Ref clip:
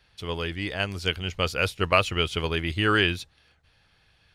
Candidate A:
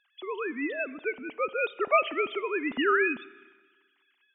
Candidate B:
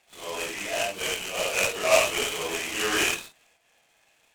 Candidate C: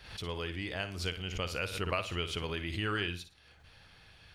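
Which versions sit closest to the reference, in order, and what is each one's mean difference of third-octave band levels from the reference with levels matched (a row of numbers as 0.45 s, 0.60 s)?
C, B, A; 4.5 dB, 12.0 dB, 16.0 dB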